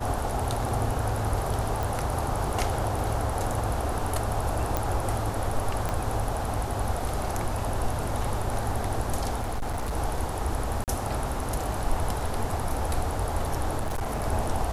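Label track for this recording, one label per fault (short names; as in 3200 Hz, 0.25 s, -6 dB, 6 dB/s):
1.830000	1.830000	pop
4.770000	4.770000	pop
5.890000	5.890000	pop -14 dBFS
9.390000	9.940000	clipped -25.5 dBFS
10.840000	10.880000	gap 38 ms
13.790000	14.250000	clipped -25 dBFS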